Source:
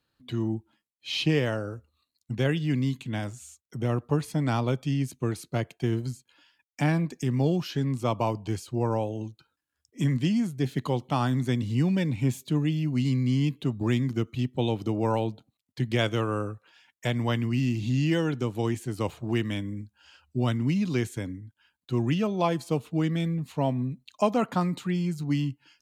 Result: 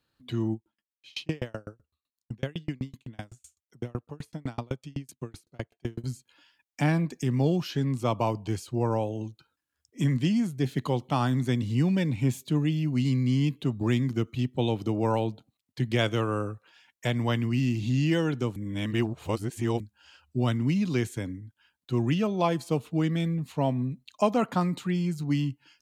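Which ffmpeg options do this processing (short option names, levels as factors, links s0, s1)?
-filter_complex "[0:a]asettb=1/sr,asplit=3[s0][s1][s2];[s0]atrim=end=0.534[s3];[s1]atrim=start=0.53:end=6.04,asetpts=PTS-STARTPTS,afade=t=in:d=0.004:c=qsin,afade=t=out:st=5.506:d=0.004:c=qsin,aeval=exprs='val(0)*pow(10,-37*if(lt(mod(7.9*n/s,1),2*abs(7.9)/1000),1-mod(7.9*n/s,1)/(2*abs(7.9)/1000),(mod(7.9*n/s,1)-2*abs(7.9)/1000)/(1-2*abs(7.9)/1000))/20)':c=same[s4];[s2]atrim=start=6.036[s5];[s3][s4]acrossfade=d=0.004:c1=hsin:c2=qsin[s6];[s6][s5]acrossfade=d=0.004:c1=qsin:c2=hsin,asplit=3[s7][s8][s9];[s7]atrim=end=18.562[s10];[s8]atrim=start=18.558:end=19.802,asetpts=PTS-STARTPTS,areverse[s11];[s9]atrim=start=19.798[s12];[s10][s11]acrossfade=d=0.004:c1=hsin:c2=hsin[s13];[s13][s12]acrossfade=d=0.004:c1=hsin:c2=hsin"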